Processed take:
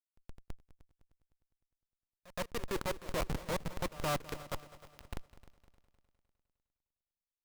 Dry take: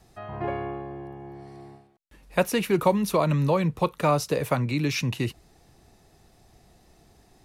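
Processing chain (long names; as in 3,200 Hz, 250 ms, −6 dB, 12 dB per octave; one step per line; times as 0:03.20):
output level in coarse steps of 22 dB
comparator with hysteresis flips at −34 dBFS
echo ahead of the sound 120 ms −20 dB
transient designer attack −6 dB, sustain +1 dB
on a send: echo machine with several playback heads 102 ms, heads second and third, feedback 47%, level −18 dB
on the sum: level +2 dB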